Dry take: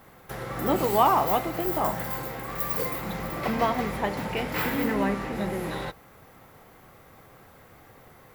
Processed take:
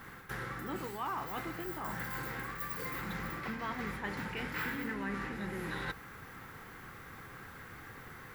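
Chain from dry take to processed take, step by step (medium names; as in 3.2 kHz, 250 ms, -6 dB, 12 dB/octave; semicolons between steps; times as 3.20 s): reverse; compression 4:1, threshold -40 dBFS, peak gain reduction 20.5 dB; reverse; fifteen-band graphic EQ 630 Hz -11 dB, 1.6 kHz +8 dB, 16 kHz -6 dB; trim +2.5 dB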